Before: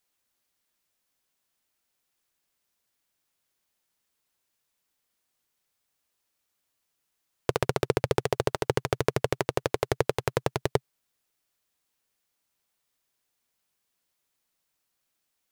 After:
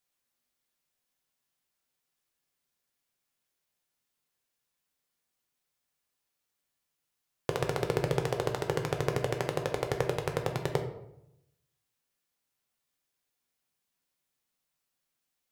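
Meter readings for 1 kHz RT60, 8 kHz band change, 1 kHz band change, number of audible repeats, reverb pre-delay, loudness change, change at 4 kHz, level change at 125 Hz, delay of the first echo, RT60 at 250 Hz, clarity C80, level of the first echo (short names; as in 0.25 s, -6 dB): 0.75 s, -4.5 dB, -4.0 dB, none, 3 ms, -3.5 dB, -4.0 dB, -1.5 dB, none, 0.95 s, 11.0 dB, none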